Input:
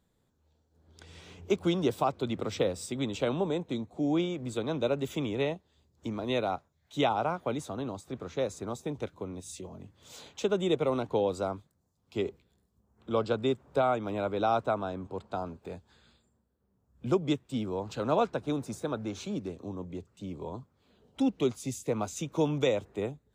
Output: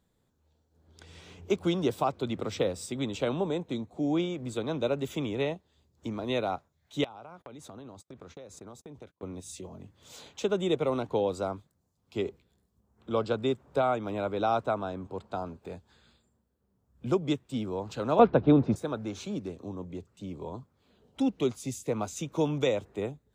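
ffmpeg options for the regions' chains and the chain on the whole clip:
-filter_complex "[0:a]asettb=1/sr,asplit=3[a][b][c];[a]atrim=end=7.044[d];[b]atrim=start=7.04:end=9.23,asetpts=PTS-STARTPTS,afade=t=in:d=0.004:c=qsin,afade=t=out:st=2.186:d=0.004:c=qsin,agate=range=-33dB:threshold=-48dB:ratio=16:release=100:detection=peak,acompressor=threshold=-42dB:ratio=12:attack=3.2:release=140:knee=1:detection=peak[e];[c]atrim=start=9.226[f];[d][e]acrossfade=d=0.004:c1=hsin:c2=qsin[g];[g][f]acrossfade=d=0.004:c1=qsin:c2=hsin,asettb=1/sr,asplit=3[h][i][j];[h]atrim=end=18.194[k];[i]atrim=start=18.19:end=18.76,asetpts=PTS-STARTPTS,afade=t=in:d=0.004:c=qsin,afade=t=out:st=0.566:d=0.004:c=qsin,lowpass=f=3.8k:w=0.5412,lowpass=f=3.8k:w=1.3066,tiltshelf=f=930:g=5,acontrast=88[l];[j]atrim=start=18.756[m];[k][l]acrossfade=d=0.004:c1=hsin:c2=qsin[n];[n][m]acrossfade=d=0.004:c1=qsin:c2=hsin"

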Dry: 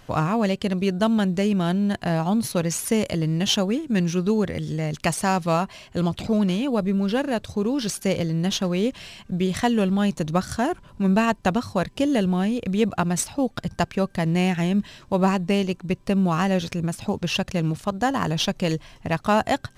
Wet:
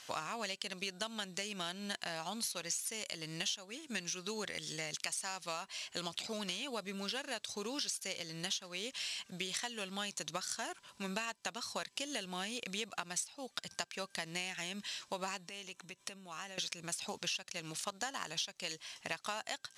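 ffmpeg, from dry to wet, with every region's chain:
-filter_complex "[0:a]asettb=1/sr,asplit=3[a][b][c];[a]atrim=end=15.494[d];[b]atrim=start=15.49:end=16.58,asetpts=PTS-STARTPTS,afade=t=in:d=0.004:c=qsin,afade=t=out:st=1.086:d=0.004:c=qsin,bandreject=f=4.7k:w=5.7,acompressor=threshold=-32dB:ratio=12:attack=3.2:release=140:knee=1:detection=peak[e];[c]atrim=start=16.576[f];[d][e]acrossfade=d=0.004:c1=hsin:c2=qsin[g];[g][f]acrossfade=d=0.004:c1=qsin:c2=hsin,lowpass=7.2k,aderivative,acompressor=threshold=-46dB:ratio=10,volume=10dB"

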